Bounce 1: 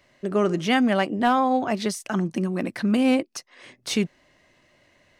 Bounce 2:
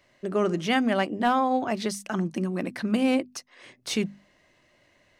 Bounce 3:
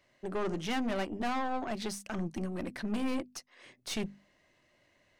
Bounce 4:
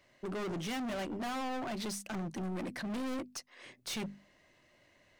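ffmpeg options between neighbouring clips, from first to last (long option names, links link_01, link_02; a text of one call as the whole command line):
ffmpeg -i in.wav -af "bandreject=frequency=50:width_type=h:width=6,bandreject=frequency=100:width_type=h:width=6,bandreject=frequency=150:width_type=h:width=6,bandreject=frequency=200:width_type=h:width=6,bandreject=frequency=250:width_type=h:width=6,volume=-2.5dB" out.wav
ffmpeg -i in.wav -af "aeval=exprs='(tanh(17.8*val(0)+0.55)-tanh(0.55))/17.8':channel_layout=same,volume=-3.5dB" out.wav
ffmpeg -i in.wav -af "asoftclip=type=hard:threshold=-38dB,volume=2.5dB" out.wav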